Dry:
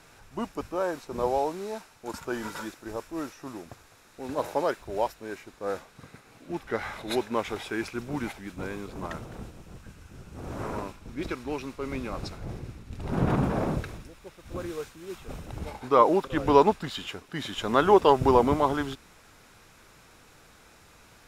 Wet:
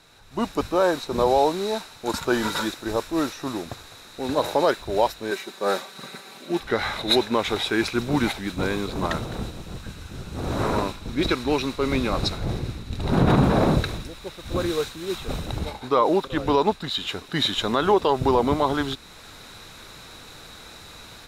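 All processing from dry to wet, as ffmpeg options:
-filter_complex "[0:a]asettb=1/sr,asplit=3[s0][s1][s2];[s0]atrim=end=5.314[s3];[s1]atrim=start=5.31:end=6.6,asetpts=PTS-STARTPTS,afade=t=in:d=0.004:c=qsin,afade=t=out:st=1.286:d=0.004:c=qsin,highpass=240,highshelf=f=9600:g=4,aecho=1:1:5.2:0.63,atrim=end_sample=56889[s4];[s2]atrim=start=6.596[s5];[s3][s4]acrossfade=d=0.004:c1=hsin:c2=qsin[s6];[s6][s5]acrossfade=d=0.004:c1=qsin:c2=hsin,equalizer=f=3900:t=o:w=0.24:g=13,dynaudnorm=f=250:g=3:m=3.98,alimiter=level_in=1.88:limit=0.891:release=50:level=0:latency=1,volume=0.422"

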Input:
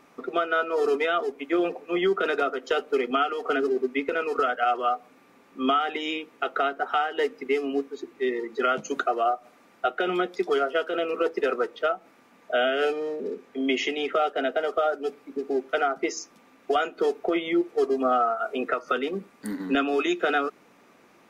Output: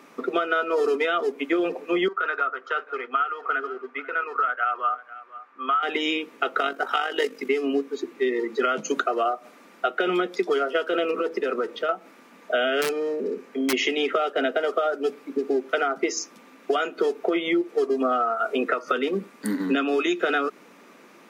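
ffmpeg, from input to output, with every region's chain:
-filter_complex "[0:a]asettb=1/sr,asplit=3[s0][s1][s2];[s0]atrim=end=2.084[s3];[s1]atrim=start=2.08:end=5.83,asetpts=PTS-STARTPTS,afade=t=in:d=0.004:c=qsin,afade=t=out:st=3.746:d=0.004:c=qsin,bandpass=f=1300:t=q:w=2.2,aecho=1:1:491:0.112,atrim=end_sample=165375[s4];[s2]atrim=start=5.826[s5];[s3][s4]acrossfade=d=0.004:c1=hsin:c2=qsin[s6];[s6][s5]acrossfade=d=0.004:c1=qsin:c2=hsin,asettb=1/sr,asplit=3[s7][s8][s9];[s7]atrim=end=6.584[s10];[s8]atrim=start=6.58:end=7.49,asetpts=PTS-STARTPTS,afade=t=in:d=0.004:c=qsin,afade=t=out:st=0.906:d=0.004:c=qsin,highshelf=f=3500:g=10,tremolo=f=48:d=0.571[s11];[s9]atrim=start=7.486[s12];[s10][s11]acrossfade=d=0.004:c1=hsin:c2=qsin[s13];[s13][s12]acrossfade=d=0.004:c1=qsin:c2=hsin,asettb=1/sr,asplit=3[s14][s15][s16];[s14]atrim=end=11.114[s17];[s15]atrim=start=11.11:end=11.89,asetpts=PTS-STARTPTS,afade=t=in:d=0.004:c=qsin,afade=t=out:st=0.776:d=0.004:c=qsin,lowshelf=f=160:g=11,acompressor=threshold=0.0355:ratio=3:attack=3.2:release=140:knee=1:detection=peak[s18];[s16]atrim=start=11.886[s19];[s17][s18]acrossfade=d=0.004:c1=hsin:c2=qsin[s20];[s20][s19]acrossfade=d=0.004:c1=qsin:c2=hsin,asettb=1/sr,asplit=3[s21][s22][s23];[s21]atrim=end=12.814[s24];[s22]atrim=start=12.81:end=13.73,asetpts=PTS-STARTPTS,afade=t=in:d=0.004:c=qsin,afade=t=out:st=0.916:d=0.004:c=qsin,aeval=exprs='(mod(6.31*val(0)+1,2)-1)/6.31':c=same,equalizer=f=3500:w=6.3:g=-5,acompressor=threshold=0.02:ratio=1.5:attack=3.2:release=140:knee=1:detection=peak[s25];[s23]atrim=start=13.726[s26];[s24][s25]acrossfade=d=0.004:c1=hsin:c2=qsin[s27];[s27][s26]acrossfade=d=0.004:c1=qsin:c2=hsin,highpass=f=170:w=0.5412,highpass=f=170:w=1.3066,equalizer=f=750:t=o:w=0.33:g=-5,acompressor=threshold=0.0501:ratio=6,volume=2.11"

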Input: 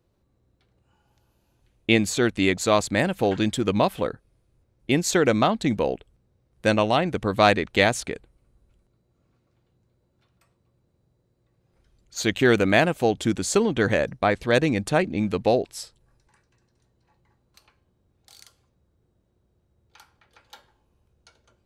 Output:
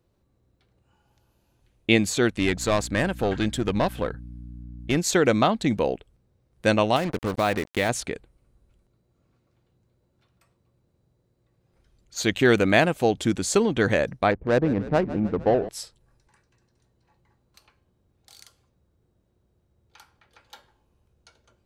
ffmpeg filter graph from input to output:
-filter_complex "[0:a]asettb=1/sr,asplit=3[s0][s1][s2];[s0]atrim=end=2.394[s3];[s1]atrim=start=2.39:end=4.97,asetpts=PTS-STARTPTS,afade=t=in:d=0.004:c=qsin,afade=t=out:st=2.576:d=0.004:c=qsin,equalizer=f=1600:w=6.4:g=6,aeval=exprs='(tanh(5.01*val(0)+0.45)-tanh(0.45))/5.01':c=same,aeval=exprs='val(0)+0.0126*(sin(2*PI*60*n/s)+sin(2*PI*2*60*n/s)/2+sin(2*PI*3*60*n/s)/3+sin(2*PI*4*60*n/s)/4+sin(2*PI*5*60*n/s)/5)':c=same[s4];[s2]atrim=start=4.966[s5];[s3][s4]acrossfade=d=0.004:c1=hsin:c2=qsin[s6];[s6][s5]acrossfade=d=0.004:c1=qsin:c2=hsin,asettb=1/sr,asplit=3[s7][s8][s9];[s7]atrim=end=6.964[s10];[s8]atrim=start=6.96:end=7.89,asetpts=PTS-STARTPTS,afade=t=in:d=0.004:c=qsin,afade=t=out:st=0.926:d=0.004:c=qsin,highshelf=f=5200:g=-10.5,acrusher=bits=4:mix=0:aa=0.5,acompressor=threshold=0.0794:ratio=2:attack=3.2:release=140:knee=1:detection=peak[s11];[s9]atrim=start=7.886[s12];[s10][s11]acrossfade=d=0.004:c1=hsin:c2=qsin[s13];[s13][s12]acrossfade=d=0.004:c1=qsin:c2=hsin,asettb=1/sr,asplit=3[s14][s15][s16];[s14]atrim=end=14.314[s17];[s15]atrim=start=14.31:end=15.69,asetpts=PTS-STARTPTS,afade=t=in:d=0.004:c=qsin,afade=t=out:st=1.376:d=0.004:c=qsin,lowpass=1500,adynamicsmooth=sensitivity=1:basefreq=580,asplit=8[s18][s19][s20][s21][s22][s23][s24][s25];[s19]adelay=153,afreqshift=-35,volume=0.178[s26];[s20]adelay=306,afreqshift=-70,volume=0.114[s27];[s21]adelay=459,afreqshift=-105,volume=0.0724[s28];[s22]adelay=612,afreqshift=-140,volume=0.0468[s29];[s23]adelay=765,afreqshift=-175,volume=0.0299[s30];[s24]adelay=918,afreqshift=-210,volume=0.0191[s31];[s25]adelay=1071,afreqshift=-245,volume=0.0122[s32];[s18][s26][s27][s28][s29][s30][s31][s32]amix=inputs=8:normalize=0,atrim=end_sample=60858[s33];[s16]atrim=start=15.686[s34];[s17][s33]acrossfade=d=0.004:c1=hsin:c2=qsin[s35];[s35][s34]acrossfade=d=0.004:c1=qsin:c2=hsin"

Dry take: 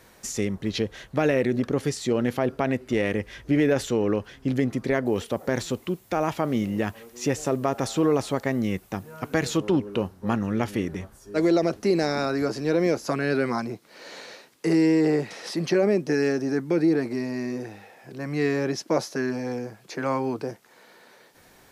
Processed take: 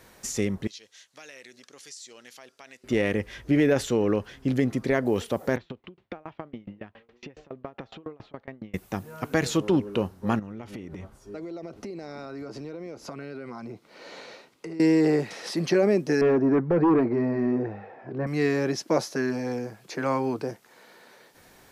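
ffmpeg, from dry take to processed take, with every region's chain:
-filter_complex "[0:a]asettb=1/sr,asplit=3[s0][s1][s2];[s0]atrim=end=0.674[s3];[s1]atrim=start=0.67:end=2.84,asetpts=PTS-STARTPTS,afade=t=in:d=0.004:c=qsin,afade=t=out:st=2.166:d=0.004:c=qsin,bandpass=f=6400:t=q:w=1.4,acompressor=threshold=0.00891:ratio=3:attack=3.2:release=140:knee=1:detection=peak[s4];[s2]atrim=start=2.836[s5];[s3][s4]acrossfade=d=0.004:c1=hsin:c2=qsin[s6];[s6][s5]acrossfade=d=0.004:c1=qsin:c2=hsin,asettb=1/sr,asplit=3[s7][s8][s9];[s7]atrim=end=5.564[s10];[s8]atrim=start=5.56:end=8.74,asetpts=PTS-STARTPTS,afade=t=in:d=0.004:c=qsin,afade=t=out:st=3.176:d=0.004:c=qsin,lowpass=f=3500:w=0.5412,lowpass=f=3500:w=1.3066,acompressor=threshold=0.0355:ratio=5:attack=3.2:release=140:knee=1:detection=peak,aeval=exprs='val(0)*pow(10,-29*if(lt(mod(7.2*n/s,1),2*abs(7.2)/1000),1-mod(7.2*n/s,1)/(2*abs(7.2)/1000),(mod(7.2*n/s,1)-2*abs(7.2)/1000)/(1-2*abs(7.2)/1000))/20)':c=same[s11];[s9]atrim=start=8.736[s12];[s10][s11]acrossfade=d=0.004:c1=hsin:c2=qsin[s13];[s13][s12]acrossfade=d=0.004:c1=qsin:c2=hsin,asettb=1/sr,asplit=3[s14][s15][s16];[s14]atrim=end=10.394[s17];[s15]atrim=start=10.39:end=14.8,asetpts=PTS-STARTPTS,afade=t=in:d=0.004:c=qsin,afade=t=out:st=4.406:d=0.004:c=qsin,bandreject=f=1700:w=9,acompressor=threshold=0.0224:ratio=16:attack=3.2:release=140:knee=1:detection=peak,lowpass=f=3400:p=1[s18];[s16]atrim=start=14.796[s19];[s17][s18]acrossfade=d=0.004:c1=hsin:c2=qsin[s20];[s20][s19]acrossfade=d=0.004:c1=qsin:c2=hsin,asettb=1/sr,asplit=3[s21][s22][s23];[s21]atrim=end=16.214[s24];[s22]atrim=start=16.21:end=18.27,asetpts=PTS-STARTPTS,afade=t=in:d=0.004:c=qsin,afade=t=out:st=2.056:d=0.004:c=qsin,lowpass=1300,flanger=delay=1.5:depth=1.6:regen=-55:speed=1.9:shape=sinusoidal,aeval=exprs='0.158*sin(PI/2*2*val(0)/0.158)':c=same[s25];[s23]atrim=start=18.266[s26];[s24][s25]acrossfade=d=0.004:c1=hsin:c2=qsin[s27];[s27][s26]acrossfade=d=0.004:c1=qsin:c2=hsin"

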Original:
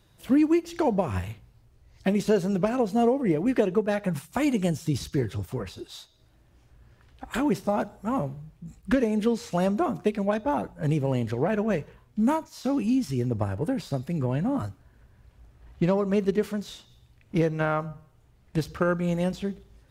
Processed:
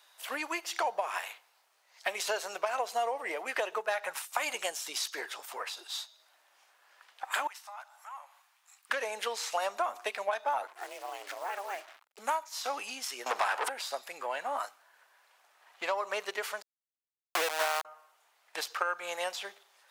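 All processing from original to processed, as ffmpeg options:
-filter_complex "[0:a]asettb=1/sr,asplit=3[s0][s1][s2];[s0]atrim=end=7.474[s3];[s1]atrim=start=7.47:end=8.9,asetpts=PTS-STARTPTS,afade=t=in:d=0.004:c=qsin,afade=t=out:st=1.426:d=0.004:c=qsin,highpass=f=870:w=0.5412,highpass=f=870:w=1.3066,acompressor=threshold=0.00112:ratio=2:attack=3.2:release=140:knee=1:detection=peak[s4];[s2]atrim=start=8.896[s5];[s3][s4]acrossfade=d=0.004:c1=hsin:c2=qsin[s6];[s6][s5]acrossfade=d=0.004:c1=qsin:c2=hsin,asettb=1/sr,asplit=3[s7][s8][s9];[s7]atrim=end=10.674[s10];[s8]atrim=start=10.67:end=12.19,asetpts=PTS-STARTPTS,afade=t=in:d=0.004:c=qsin,afade=t=out:st=1.516:d=0.004:c=qsin,acompressor=threshold=0.0447:ratio=6:attack=3.2:release=140:knee=1:detection=peak,acrusher=bits=7:mix=0:aa=0.5,aeval=exprs='val(0)*sin(2*PI*190*n/s)':c=same[s11];[s9]atrim=start=12.186[s12];[s10][s11]acrossfade=d=0.004:c1=hsin:c2=qsin[s13];[s13][s12]acrossfade=d=0.004:c1=qsin:c2=hsin,asettb=1/sr,asplit=3[s14][s15][s16];[s14]atrim=end=13.264[s17];[s15]atrim=start=13.26:end=13.69,asetpts=PTS-STARTPTS,afade=t=in:d=0.004:c=qsin,afade=t=out:st=0.426:d=0.004:c=qsin,equalizer=f=580:w=6.2:g=-7,asplit=2[s18][s19];[s19]highpass=f=720:p=1,volume=28.2,asoftclip=type=tanh:threshold=0.266[s20];[s18][s20]amix=inputs=2:normalize=0,lowpass=f=4200:p=1,volume=0.501[s21];[s16]atrim=start=13.686[s22];[s17][s21]acrossfade=d=0.004:c1=hsin:c2=qsin[s23];[s23][s22]acrossfade=d=0.004:c1=qsin:c2=hsin,asettb=1/sr,asplit=3[s24][s25][s26];[s24]atrim=end=16.624[s27];[s25]atrim=start=16.62:end=17.85,asetpts=PTS-STARTPTS,afade=t=in:d=0.004:c=qsin,afade=t=out:st=1.226:d=0.004:c=qsin,tiltshelf=f=1400:g=5,aecho=1:1:6.1:0.7,atrim=end_sample=54243,aeval=exprs='val(0)*gte(abs(val(0)),0.119)':c=same[s28];[s26]atrim=start=17.846[s29];[s27][s28]acrossfade=d=0.004:c1=hsin:c2=qsin[s30];[s30][s29]acrossfade=d=0.004:c1=qsin:c2=hsin,highpass=f=740:w=0.5412,highpass=f=740:w=1.3066,acompressor=threshold=0.0224:ratio=5,volume=1.88"

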